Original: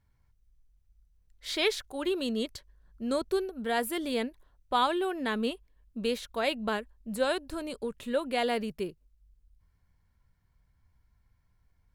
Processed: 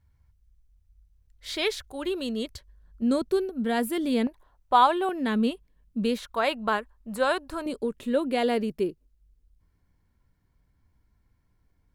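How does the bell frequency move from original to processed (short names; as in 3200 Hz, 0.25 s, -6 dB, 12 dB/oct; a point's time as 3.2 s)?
bell +9.5 dB 1.3 oct
70 Hz
from 3.02 s 230 Hz
from 4.27 s 890 Hz
from 5.09 s 190 Hz
from 6.18 s 1100 Hz
from 7.66 s 310 Hz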